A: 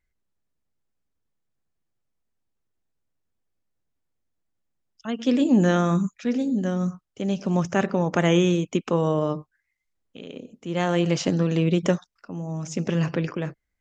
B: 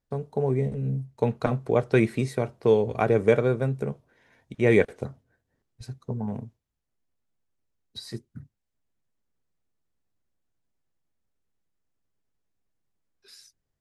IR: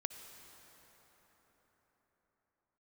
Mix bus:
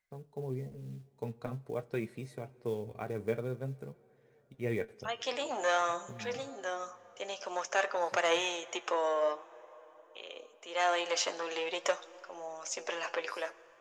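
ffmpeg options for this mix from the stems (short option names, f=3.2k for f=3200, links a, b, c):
-filter_complex "[0:a]asoftclip=type=tanh:threshold=-14dB,highpass=f=570:w=0.5412,highpass=f=570:w=1.3066,volume=1.5dB,asplit=3[a][b][c];[b]volume=-8.5dB[d];[1:a]acrusher=bits=7:mode=log:mix=0:aa=0.000001,volume=-1.5dB,afade=t=in:st=11.6:d=0.22:silence=0.281838,asplit=2[e][f];[f]volume=-14dB[g];[c]apad=whole_len=608917[h];[e][h]sidechaincompress=threshold=-34dB:ratio=8:attack=16:release=129[i];[2:a]atrim=start_sample=2205[j];[d][g]amix=inputs=2:normalize=0[k];[k][j]afir=irnorm=-1:irlink=0[l];[a][i][l]amix=inputs=3:normalize=0,flanger=delay=5.2:depth=5:regen=61:speed=0.49:shape=triangular"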